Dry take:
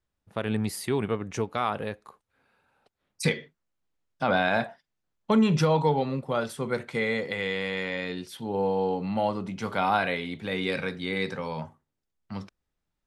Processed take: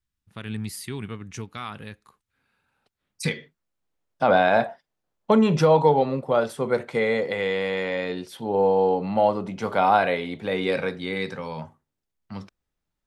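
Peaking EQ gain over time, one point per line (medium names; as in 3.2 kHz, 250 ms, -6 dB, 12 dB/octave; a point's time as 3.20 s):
peaking EQ 600 Hz 1.8 oct
1.88 s -14.5 dB
3.33 s -3.5 dB
4.24 s +8 dB
10.83 s +8 dB
11.29 s 0 dB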